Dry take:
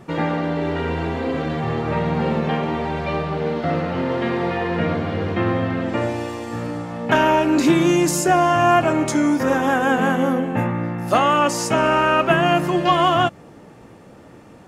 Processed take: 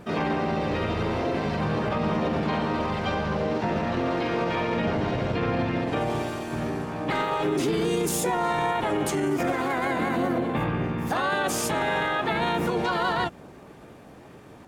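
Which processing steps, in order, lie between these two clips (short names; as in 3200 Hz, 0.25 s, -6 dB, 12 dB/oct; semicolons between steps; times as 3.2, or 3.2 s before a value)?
harmoniser -12 st -8 dB, +4 st -8 dB, +5 st 0 dB; limiter -11 dBFS, peak gain reduction 12 dB; gain -6 dB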